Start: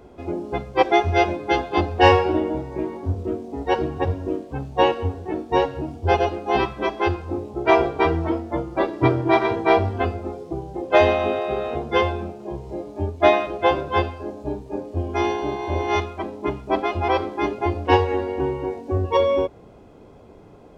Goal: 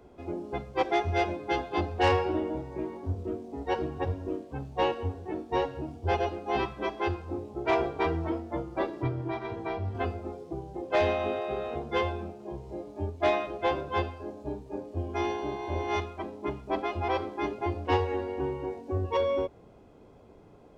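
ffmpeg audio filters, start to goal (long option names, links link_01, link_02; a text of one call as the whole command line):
ffmpeg -i in.wav -filter_complex "[0:a]asettb=1/sr,asplit=3[link_01][link_02][link_03];[link_01]atrim=end=8.974[link_04];[link_02]atrim=start=8.97:end=9.95,asetpts=PTS-STARTPTS,afade=type=in:duration=0.004:curve=qsin,afade=type=out:start_time=0.976:duration=0.004:curve=qsin,acrossover=split=180[link_05][link_06];[link_06]acompressor=threshold=-27dB:ratio=3[link_07];[link_05][link_07]amix=inputs=2:normalize=0[link_08];[link_03]atrim=start=9.946[link_09];[link_04][link_08]acrossfade=duration=0.004:curve1=hsin:curve2=qsin[link_10];[link_10][link_09]acrossfade=duration=0.004:curve1=qsin:curve2=hsin,acrossover=split=130[link_11][link_12];[link_12]asoftclip=type=tanh:threshold=-10dB[link_13];[link_11][link_13]amix=inputs=2:normalize=0,volume=-7.5dB" out.wav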